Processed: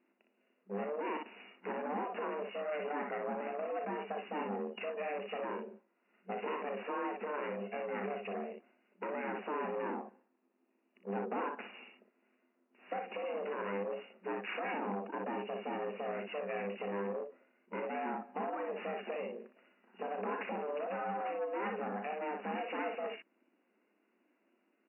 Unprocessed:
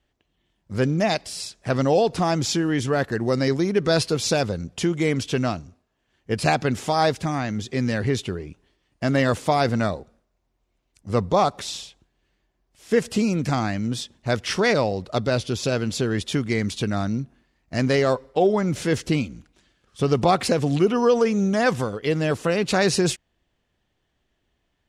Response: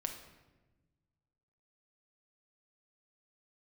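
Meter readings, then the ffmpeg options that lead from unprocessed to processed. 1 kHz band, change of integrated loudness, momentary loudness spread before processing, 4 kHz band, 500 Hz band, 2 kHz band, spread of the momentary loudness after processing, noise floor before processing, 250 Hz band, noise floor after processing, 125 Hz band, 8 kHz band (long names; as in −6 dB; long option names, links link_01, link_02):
−12.0 dB, −16.5 dB, 8 LU, −24.5 dB, −15.0 dB, −14.5 dB, 7 LU, −73 dBFS, −20.0 dB, −77 dBFS, below −25 dB, below −40 dB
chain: -af "aeval=exprs='val(0)*sin(2*PI*300*n/s)':channel_layout=same,alimiter=limit=-17.5dB:level=0:latency=1:release=100,acompressor=threshold=-29dB:ratio=4,aecho=1:1:36|60:0.282|0.501,asoftclip=type=tanh:threshold=-30dB,afftfilt=real='re*between(b*sr/4096,190,2900)':imag='im*between(b*sr/4096,190,2900)':win_size=4096:overlap=0.75" -ar 32000 -c:a libmp3lame -b:a 40k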